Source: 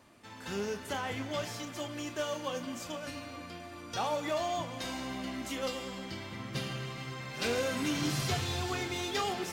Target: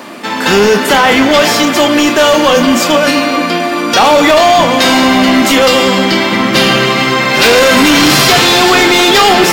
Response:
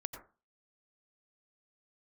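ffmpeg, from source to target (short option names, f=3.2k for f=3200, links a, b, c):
-af "highpass=f=190:w=0.5412,highpass=f=190:w=1.3066,apsyclip=35.5dB,equalizer=f=9.1k:w=0.92:g=-5.5,bandreject=f=6.1k:w=24,volume=-2.5dB"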